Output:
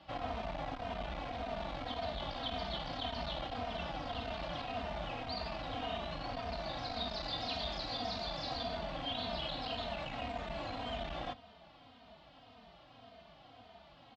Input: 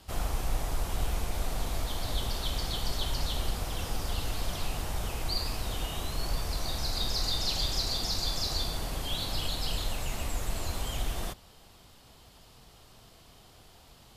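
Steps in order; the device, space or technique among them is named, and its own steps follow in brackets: barber-pole flanger into a guitar amplifier (endless flanger 3 ms -1.8 Hz; soft clip -28.5 dBFS, distortion -16 dB; speaker cabinet 84–3700 Hz, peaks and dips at 87 Hz -7 dB, 130 Hz -7 dB, 260 Hz +5 dB, 390 Hz -10 dB, 680 Hz +9 dB); gain +2 dB

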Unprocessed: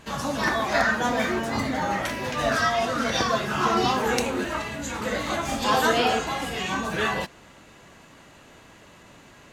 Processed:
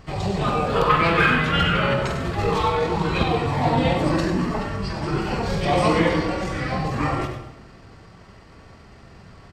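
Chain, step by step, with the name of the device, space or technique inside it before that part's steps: 0.89–1.93 band shelf 3100 Hz +14 dB; outdoor echo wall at 40 m, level -29 dB; monster voice (pitch shift -6.5 st; low shelf 180 Hz +9 dB; echo 99 ms -9.5 dB; reverb RT60 0.95 s, pre-delay 42 ms, DRR 7.5 dB)

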